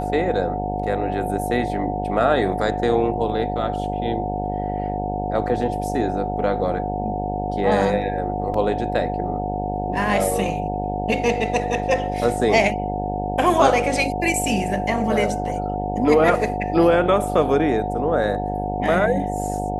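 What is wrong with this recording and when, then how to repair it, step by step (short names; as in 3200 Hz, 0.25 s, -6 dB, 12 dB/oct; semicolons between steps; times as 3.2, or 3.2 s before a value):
buzz 50 Hz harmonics 18 -27 dBFS
tone 730 Hz -26 dBFS
8.54 gap 2.9 ms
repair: de-hum 50 Hz, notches 18; notch 730 Hz, Q 30; interpolate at 8.54, 2.9 ms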